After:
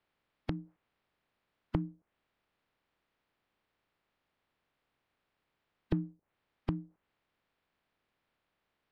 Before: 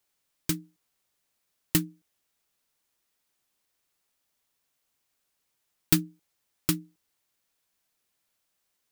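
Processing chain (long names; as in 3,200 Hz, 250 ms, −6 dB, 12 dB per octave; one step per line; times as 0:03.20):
compressing power law on the bin magnitudes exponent 0.51
in parallel at −1 dB: downward compressor 6 to 1, threshold −31 dBFS, peak gain reduction 14.5 dB
on the sum: treble cut that deepens with the level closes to 310 Hz, closed at −28 dBFS
high-frequency loss of the air 390 metres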